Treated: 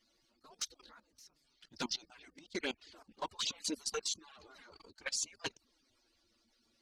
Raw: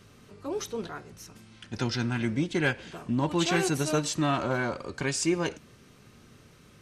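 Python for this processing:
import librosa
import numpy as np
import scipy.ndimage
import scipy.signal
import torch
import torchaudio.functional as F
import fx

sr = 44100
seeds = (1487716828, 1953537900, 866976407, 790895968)

y = fx.hpss_only(x, sr, part='percussive')
y = fx.peak_eq(y, sr, hz=4600.0, db=13.0, octaves=0.76)
y = fx.env_flanger(y, sr, rest_ms=9.6, full_db=-23.0)
y = fx.level_steps(y, sr, step_db=17)
y = fx.upward_expand(y, sr, threshold_db=-45.0, expansion=1.5)
y = y * 10.0 ** (-1.0 / 20.0)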